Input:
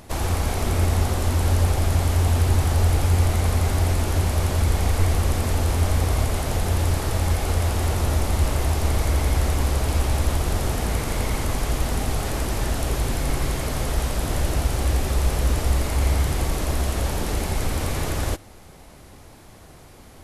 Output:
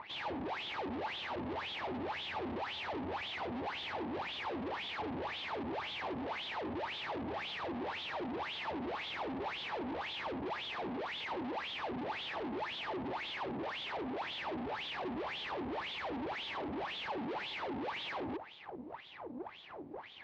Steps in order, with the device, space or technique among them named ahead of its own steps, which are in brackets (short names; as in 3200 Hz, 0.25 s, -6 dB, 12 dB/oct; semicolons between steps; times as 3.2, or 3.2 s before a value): wah-wah guitar rig (wah 1.9 Hz 240–3500 Hz, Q 10; tube stage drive 57 dB, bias 0.65; speaker cabinet 82–4000 Hz, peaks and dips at 360 Hz +3 dB, 880 Hz +6 dB, 1400 Hz -4 dB); gain +17.5 dB